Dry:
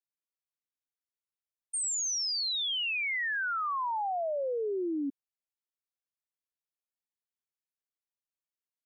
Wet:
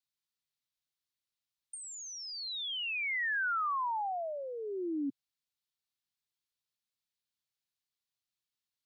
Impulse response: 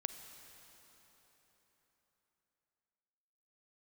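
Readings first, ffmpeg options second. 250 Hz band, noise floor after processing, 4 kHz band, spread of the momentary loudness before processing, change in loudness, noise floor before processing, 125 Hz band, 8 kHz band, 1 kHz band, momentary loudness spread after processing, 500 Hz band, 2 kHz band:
-2.5 dB, under -85 dBFS, -7.0 dB, 5 LU, -4.0 dB, under -85 dBFS, n/a, -12.5 dB, -1.5 dB, 10 LU, -6.5 dB, -1.5 dB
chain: -filter_complex "[0:a]equalizer=f=125:t=o:w=1:g=7,equalizer=f=500:t=o:w=1:g=-9,equalizer=f=4k:t=o:w=1:g=9,acrossover=split=2100[a][b];[b]acompressor=threshold=-46dB:ratio=6[c];[a][c]amix=inputs=2:normalize=0"

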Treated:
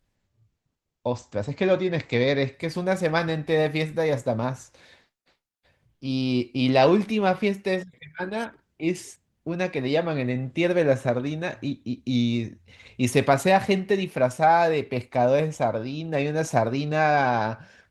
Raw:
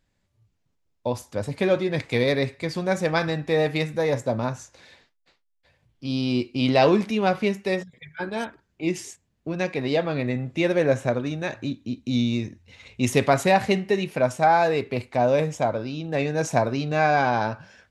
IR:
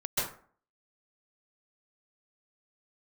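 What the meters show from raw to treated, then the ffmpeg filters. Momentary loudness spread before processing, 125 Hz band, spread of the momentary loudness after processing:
12 LU, 0.0 dB, 12 LU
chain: -ar 48000 -c:a libopus -b:a 24k

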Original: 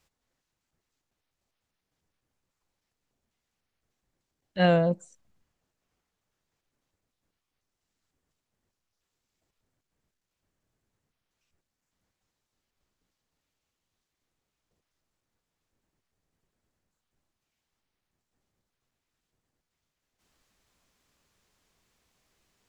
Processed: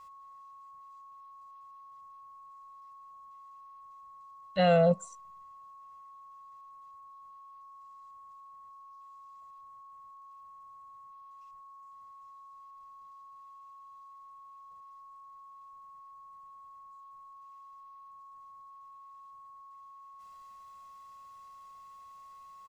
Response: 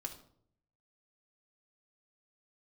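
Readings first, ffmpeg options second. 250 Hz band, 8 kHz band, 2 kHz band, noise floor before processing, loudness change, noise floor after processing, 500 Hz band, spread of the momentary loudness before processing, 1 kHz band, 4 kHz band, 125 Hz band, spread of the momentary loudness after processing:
-4.0 dB, n/a, -4.5 dB, -85 dBFS, -2.5 dB, -52 dBFS, +0.5 dB, 15 LU, +2.5 dB, -2.0 dB, -3.0 dB, 12 LU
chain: -af "aecho=1:1:1.5:0.83,alimiter=limit=-15.5dB:level=0:latency=1,lowshelf=f=160:g=-6.5,aeval=exprs='val(0)+0.00282*sin(2*PI*1100*n/s)':c=same,volume=2dB"

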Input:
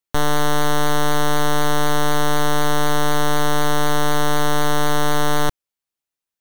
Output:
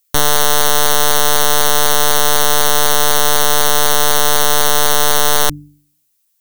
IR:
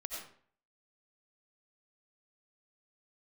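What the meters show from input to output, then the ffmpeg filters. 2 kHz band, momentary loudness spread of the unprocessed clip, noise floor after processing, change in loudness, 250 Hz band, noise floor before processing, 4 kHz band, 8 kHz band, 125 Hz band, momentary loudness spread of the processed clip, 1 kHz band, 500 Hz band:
+5.0 dB, 0 LU, -64 dBFS, +8.5 dB, -5.5 dB, under -85 dBFS, +10.5 dB, +14.0 dB, -4.0 dB, 0 LU, +4.0 dB, +4.0 dB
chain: -af "bandreject=f=49.1:t=h:w=4,bandreject=f=98.2:t=h:w=4,bandreject=f=147.3:t=h:w=4,bandreject=f=196.4:t=h:w=4,bandreject=f=245.5:t=h:w=4,bandreject=f=294.6:t=h:w=4,crystalizer=i=7:c=0,apsyclip=4.5dB,volume=-1dB"

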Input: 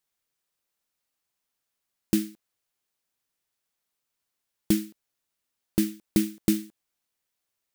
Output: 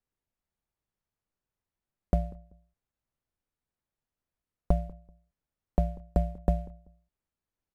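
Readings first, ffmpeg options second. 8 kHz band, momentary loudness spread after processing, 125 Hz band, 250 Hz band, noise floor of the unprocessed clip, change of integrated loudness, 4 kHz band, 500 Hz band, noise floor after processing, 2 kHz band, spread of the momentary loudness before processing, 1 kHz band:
under -25 dB, 9 LU, +5.0 dB, -10.5 dB, -83 dBFS, -4.0 dB, under -20 dB, +0.5 dB, under -85 dBFS, -14.5 dB, 4 LU, n/a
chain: -filter_complex "[0:a]equalizer=f=4k:w=0.46:g=-7.5,aeval=exprs='val(0)*sin(2*PI*380*n/s)':c=same,acrossover=split=1400|3000[a][b][c];[a]acompressor=threshold=-29dB:ratio=4[d];[b]acompressor=threshold=-57dB:ratio=4[e];[c]acompressor=threshold=-50dB:ratio=4[f];[d][e][f]amix=inputs=3:normalize=0,aemphasis=mode=reproduction:type=bsi,asplit=2[g][h];[h]adelay=192,lowpass=f=830:p=1,volume=-20dB,asplit=2[i][j];[j]adelay=192,lowpass=f=830:p=1,volume=0.26[k];[g][i][k]amix=inputs=3:normalize=0"

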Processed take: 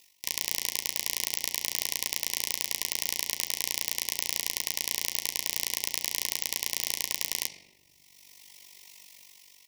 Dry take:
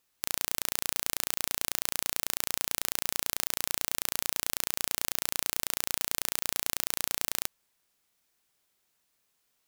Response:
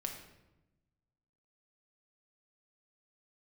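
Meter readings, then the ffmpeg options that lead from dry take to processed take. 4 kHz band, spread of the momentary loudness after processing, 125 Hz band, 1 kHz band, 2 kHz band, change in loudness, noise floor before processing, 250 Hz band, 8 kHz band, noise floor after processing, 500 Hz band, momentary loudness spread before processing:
+4.0 dB, 2 LU, -3.5 dB, -5.5 dB, +1.5 dB, +1.0 dB, -76 dBFS, -3.0 dB, +1.5 dB, -61 dBFS, -2.5 dB, 0 LU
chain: -filter_complex "[0:a]firequalizer=gain_entry='entry(780,0);entry(1200,11);entry(5500,9)':delay=0.05:min_phase=1,aeval=exprs='2.51*(cos(1*acos(clip(val(0)/2.51,-1,1)))-cos(1*PI/2))+0.501*(cos(6*acos(clip(val(0)/2.51,-1,1)))-cos(6*PI/2))':c=same,asplit=2[a][b];[b]highpass=f=100:p=1[c];[1:a]atrim=start_sample=2205,lowpass=6.2k[d];[c][d]afir=irnorm=-1:irlink=0,volume=-8.5dB[e];[a][e]amix=inputs=2:normalize=0,dynaudnorm=f=150:g=9:m=6.5dB,equalizer=f=5.6k:w=5.2:g=7.5,tremolo=f=48:d=0.889,asuperstop=centerf=1400:order=12:qfactor=1.7,asplit=2[f][g];[g]adelay=13,volume=-13dB[h];[f][h]amix=inputs=2:normalize=0,alimiter=level_in=11.5dB:limit=-1dB:release=50:level=0:latency=1,volume=-1dB"

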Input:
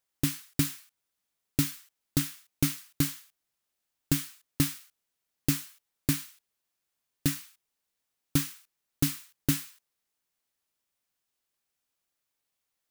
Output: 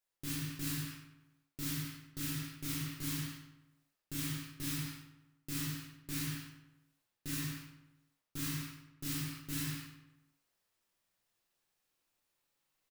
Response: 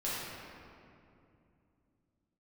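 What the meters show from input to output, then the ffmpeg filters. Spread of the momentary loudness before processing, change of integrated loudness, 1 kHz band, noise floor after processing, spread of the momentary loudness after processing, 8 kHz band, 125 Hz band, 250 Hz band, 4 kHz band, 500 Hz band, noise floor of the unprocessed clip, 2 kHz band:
13 LU, -8.5 dB, -4.5 dB, under -85 dBFS, 14 LU, -7.5 dB, -7.5 dB, -9.0 dB, -5.5 dB, -11.5 dB, -84 dBFS, -4.5 dB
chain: -filter_complex "[0:a]areverse,acompressor=threshold=-36dB:ratio=8,areverse,asplit=2[a][b];[b]adelay=97,lowpass=f=3.4k:p=1,volume=-9.5dB,asplit=2[c][d];[d]adelay=97,lowpass=f=3.4k:p=1,volume=0.54,asplit=2[e][f];[f]adelay=97,lowpass=f=3.4k:p=1,volume=0.54,asplit=2[g][h];[h]adelay=97,lowpass=f=3.4k:p=1,volume=0.54,asplit=2[i][j];[j]adelay=97,lowpass=f=3.4k:p=1,volume=0.54,asplit=2[k][l];[l]adelay=97,lowpass=f=3.4k:p=1,volume=0.54[m];[a][c][e][g][i][k][m]amix=inputs=7:normalize=0[n];[1:a]atrim=start_sample=2205,afade=t=out:st=0.32:d=0.01,atrim=end_sample=14553[o];[n][o]afir=irnorm=-1:irlink=0,volume=-2dB"

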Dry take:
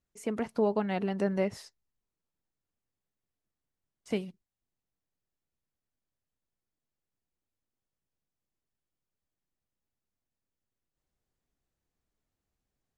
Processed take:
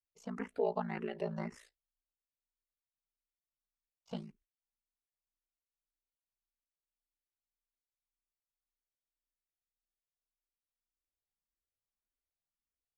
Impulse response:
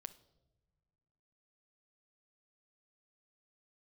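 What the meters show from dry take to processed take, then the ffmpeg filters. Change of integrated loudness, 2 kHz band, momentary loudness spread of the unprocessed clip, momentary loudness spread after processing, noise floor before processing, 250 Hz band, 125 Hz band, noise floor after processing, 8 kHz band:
-8.0 dB, -7.0 dB, 8 LU, 11 LU, under -85 dBFS, -10.0 dB, -7.0 dB, under -85 dBFS, -12.5 dB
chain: -filter_complex "[0:a]aemphasis=mode=reproduction:type=50kf,agate=range=-11dB:threshold=-60dB:ratio=16:detection=peak,equalizer=f=140:w=0.3:g=-7.5,flanger=delay=3.8:depth=4.5:regen=-62:speed=0.18:shape=sinusoidal,aeval=exprs='val(0)*sin(2*PI*28*n/s)':c=same,asplit=2[a][b];[b]afreqshift=1.8[c];[a][c]amix=inputs=2:normalize=1,volume=6.5dB"

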